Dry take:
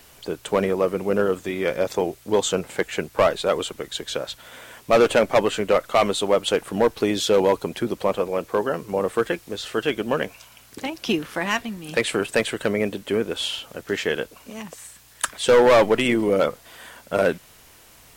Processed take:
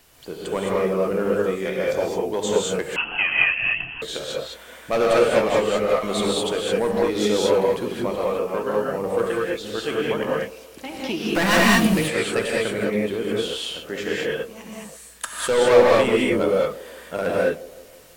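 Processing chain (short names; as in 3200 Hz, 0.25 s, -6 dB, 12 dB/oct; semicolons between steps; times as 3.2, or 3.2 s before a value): 5.89–6.41 negative-ratio compressor -21 dBFS, ratio -0.5; 11.35–11.87 sample leveller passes 5; band-limited delay 0.164 s, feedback 53%, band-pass 480 Hz, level -18 dB; non-linear reverb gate 0.24 s rising, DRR -4.5 dB; 2.96–4.02 inverted band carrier 3100 Hz; gain -6 dB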